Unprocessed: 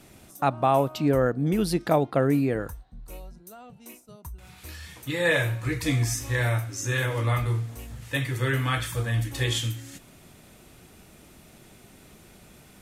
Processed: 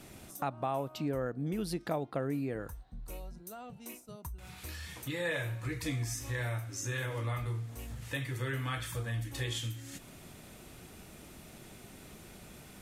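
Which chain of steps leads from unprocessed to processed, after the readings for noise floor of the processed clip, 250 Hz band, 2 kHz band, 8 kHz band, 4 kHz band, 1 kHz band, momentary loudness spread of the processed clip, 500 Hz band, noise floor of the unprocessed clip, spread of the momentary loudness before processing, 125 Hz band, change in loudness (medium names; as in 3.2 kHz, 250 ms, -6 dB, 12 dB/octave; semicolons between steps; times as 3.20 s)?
-53 dBFS, -11.0 dB, -10.5 dB, -7.5 dB, -9.0 dB, -11.5 dB, 16 LU, -11.5 dB, -53 dBFS, 21 LU, -10.0 dB, -11.5 dB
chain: compression 2:1, threshold -41 dBFS, peak gain reduction 13 dB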